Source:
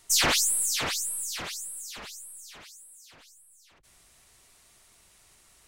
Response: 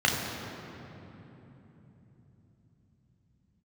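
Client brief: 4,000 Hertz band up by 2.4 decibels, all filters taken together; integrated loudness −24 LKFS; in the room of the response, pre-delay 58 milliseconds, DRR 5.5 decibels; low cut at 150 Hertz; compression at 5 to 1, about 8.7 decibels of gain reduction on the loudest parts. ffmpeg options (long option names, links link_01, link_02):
-filter_complex "[0:a]highpass=150,equalizer=frequency=4000:width_type=o:gain=3,acompressor=threshold=-29dB:ratio=5,asplit=2[link_01][link_02];[1:a]atrim=start_sample=2205,adelay=58[link_03];[link_02][link_03]afir=irnorm=-1:irlink=0,volume=-20.5dB[link_04];[link_01][link_04]amix=inputs=2:normalize=0,volume=7dB"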